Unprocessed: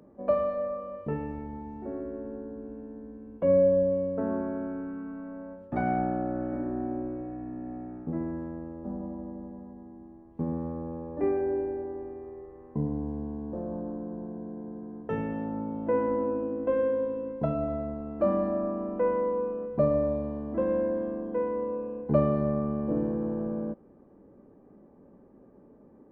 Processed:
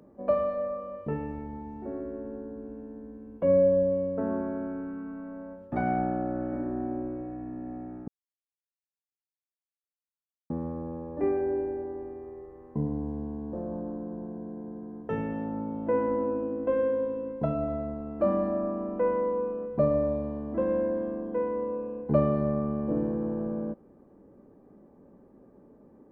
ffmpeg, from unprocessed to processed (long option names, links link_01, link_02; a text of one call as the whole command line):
ffmpeg -i in.wav -filter_complex "[0:a]asplit=3[link_01][link_02][link_03];[link_01]atrim=end=8.08,asetpts=PTS-STARTPTS,afade=type=out:start_time=8.076:duration=0.004:curve=hsin[link_04];[link_02]atrim=start=8.08:end=10.5,asetpts=PTS-STARTPTS,volume=0[link_05];[link_03]atrim=start=10.5,asetpts=PTS-STARTPTS,afade=type=in:duration=0.004:curve=hsin[link_06];[link_04][link_05][link_06]concat=n=3:v=0:a=1" out.wav